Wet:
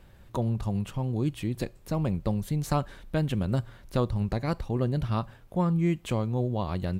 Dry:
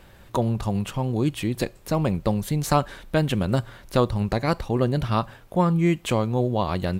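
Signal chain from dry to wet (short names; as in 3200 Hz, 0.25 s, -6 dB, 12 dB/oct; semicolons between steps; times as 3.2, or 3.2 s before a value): low shelf 250 Hz +7.5 dB; gain -9 dB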